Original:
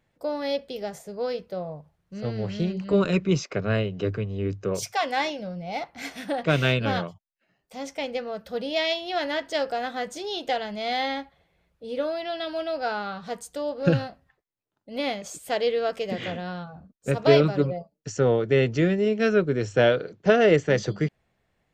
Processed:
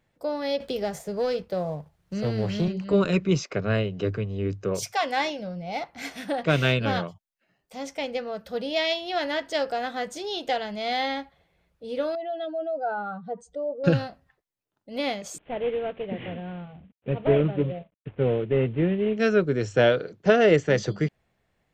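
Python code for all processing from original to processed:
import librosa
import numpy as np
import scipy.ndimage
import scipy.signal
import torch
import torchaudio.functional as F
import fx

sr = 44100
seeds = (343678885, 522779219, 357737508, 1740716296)

y = fx.chain(x, sr, fx.leveller(passes=1),
    fx.band_squash(depth_pct=40), at=(0.6, 2.68))
y = fx.chain(y, sr, fx.spec_expand(power=1.9),
    fx.gaussian_blur(sigma=1.6), at=(12.15, 13.84))
y = fx.chain(y, sr, fx.cvsd(bps=16000),
    fx.peak_eq(hz=1300.0, db=-9.0, octaves=1.8), at=(15.38, 19.17))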